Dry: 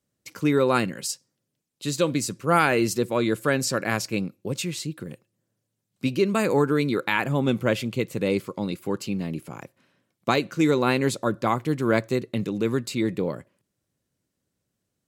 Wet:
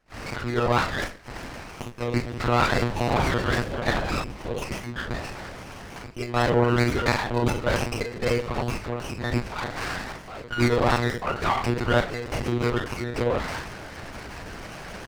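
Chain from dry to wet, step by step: jump at every zero crossing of -33 dBFS; recorder AGC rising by 57 dB/s; reverb removal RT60 2 s; gate -34 dBFS, range -32 dB; tilt EQ +4.5 dB/octave; compression 20:1, threshold -23 dBFS, peak gain reduction 25 dB; doubling 38 ms -4 dB; FDN reverb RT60 0.52 s, low-frequency decay 0.85×, high-frequency decay 0.55×, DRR 0 dB; 1.85–4.23 s: ever faster or slower copies 146 ms, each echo -7 st, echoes 2, each echo -6 dB; monotone LPC vocoder at 8 kHz 120 Hz; sliding maximum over 9 samples; trim +3 dB

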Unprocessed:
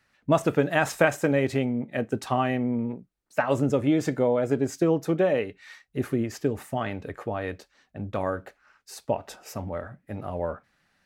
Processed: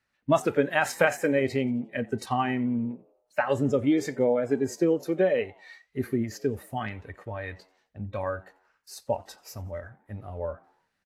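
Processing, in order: frequency-shifting echo 88 ms, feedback 50%, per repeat +94 Hz, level -18.5 dB; spectral noise reduction 10 dB; AAC 64 kbps 32 kHz

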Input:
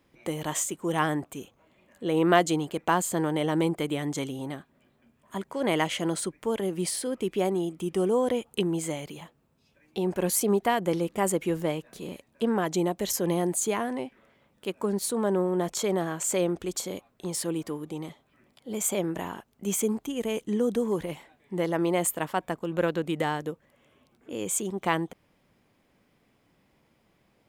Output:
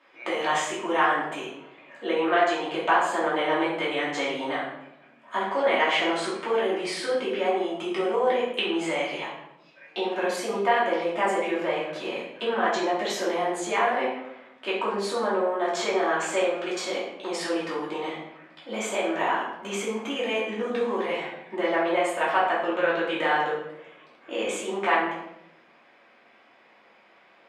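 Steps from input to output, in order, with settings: compression 6:1, threshold -30 dBFS, peak gain reduction 14.5 dB; band-pass 720–3000 Hz; simulated room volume 230 m³, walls mixed, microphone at 2.7 m; trim +8 dB

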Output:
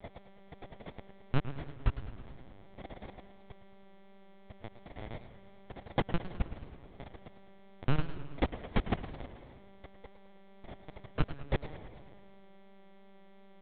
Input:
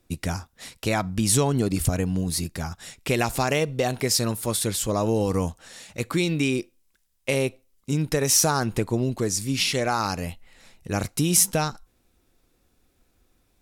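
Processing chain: delay that grows with frequency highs early, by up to 286 ms; recorder AGC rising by 8.3 dB/s; low-pass that closes with the level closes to 330 Hz, closed at -19.5 dBFS; treble shelf 3.1 kHz -2 dB; level held to a coarse grid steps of 22 dB; word length cut 6-bit, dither none; mains buzz 400 Hz, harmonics 28, -57 dBFS -7 dB/octave; sample-and-hold 32×; reverberation RT60 1.9 s, pre-delay 117 ms, DRR 16.5 dB; LPC vocoder at 8 kHz pitch kept; modulated delay 107 ms, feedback 58%, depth 154 cents, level -13 dB

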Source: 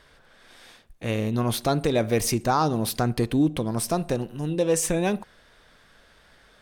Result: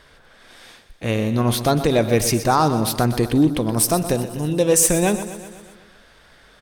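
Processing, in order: 3.70–4.89 s: treble shelf 7.7 kHz +11 dB; on a send: feedback delay 124 ms, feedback 60%, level -12.5 dB; on the sum: trim +5 dB

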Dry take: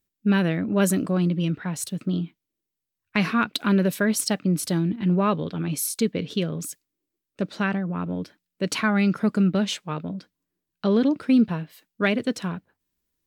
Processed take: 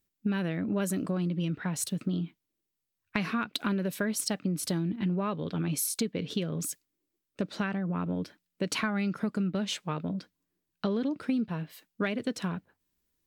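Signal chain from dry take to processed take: compression, threshold -27 dBFS, peak gain reduction 12 dB

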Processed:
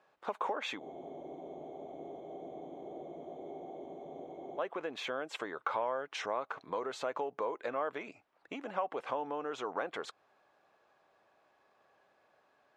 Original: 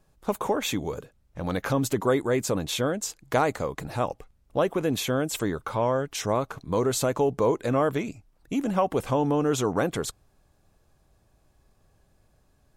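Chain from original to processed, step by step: compression 6:1, threshold -33 dBFS, peak gain reduction 14.5 dB; band-pass 620–2500 Hz; spectral freeze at 0.83 s, 3.76 s; trim +5 dB

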